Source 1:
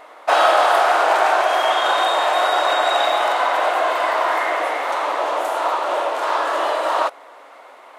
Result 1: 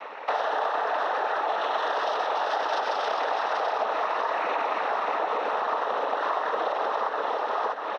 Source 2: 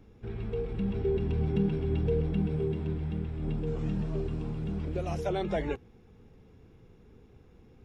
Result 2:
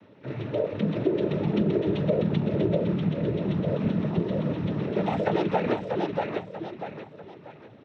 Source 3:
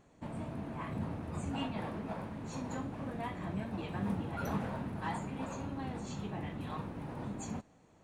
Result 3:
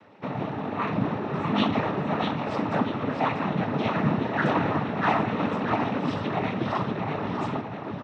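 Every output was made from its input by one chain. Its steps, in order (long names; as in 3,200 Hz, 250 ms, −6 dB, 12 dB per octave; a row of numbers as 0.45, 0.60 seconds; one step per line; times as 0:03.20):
low-pass filter 3,400 Hz 24 dB per octave
repeating echo 640 ms, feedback 37%, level −5 dB
brickwall limiter −13 dBFS
low-shelf EQ 180 Hz −10.5 dB
cochlear-implant simulation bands 12
dynamic equaliser 2,300 Hz, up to −6 dB, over −41 dBFS, Q 1.6
downward compressor 4 to 1, threshold −30 dBFS
loudness normalisation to −27 LKFS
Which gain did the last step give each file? +5.0, +10.0, +15.5 decibels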